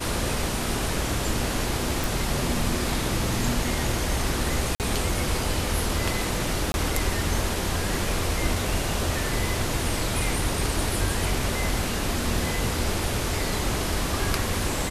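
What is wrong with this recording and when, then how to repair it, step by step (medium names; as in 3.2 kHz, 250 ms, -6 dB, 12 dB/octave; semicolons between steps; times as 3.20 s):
2.04 s: pop
4.75–4.80 s: dropout 48 ms
6.72–6.74 s: dropout 21 ms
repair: de-click; interpolate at 4.75 s, 48 ms; interpolate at 6.72 s, 21 ms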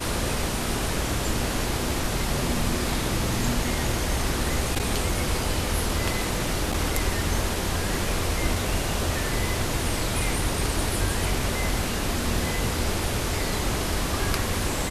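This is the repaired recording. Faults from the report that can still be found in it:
nothing left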